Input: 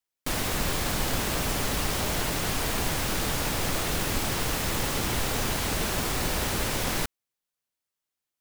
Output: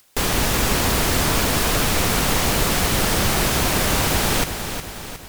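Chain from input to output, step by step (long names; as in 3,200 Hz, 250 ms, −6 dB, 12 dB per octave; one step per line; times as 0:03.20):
change of speed 1.59×
upward compression, threshold −45 dBFS
feedback echo at a low word length 362 ms, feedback 55%, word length 9 bits, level −8.5 dB
level +8 dB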